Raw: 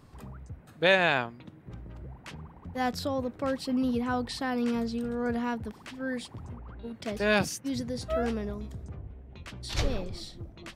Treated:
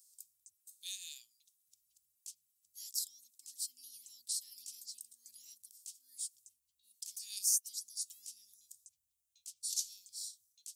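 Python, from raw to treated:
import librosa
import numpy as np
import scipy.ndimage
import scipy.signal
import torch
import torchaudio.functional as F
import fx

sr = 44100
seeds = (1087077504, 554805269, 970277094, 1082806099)

y = scipy.signal.sosfilt(scipy.signal.cheby2(4, 70, 1600.0, 'highpass', fs=sr, output='sos'), x)
y = F.gain(torch.from_numpy(y), 11.0).numpy()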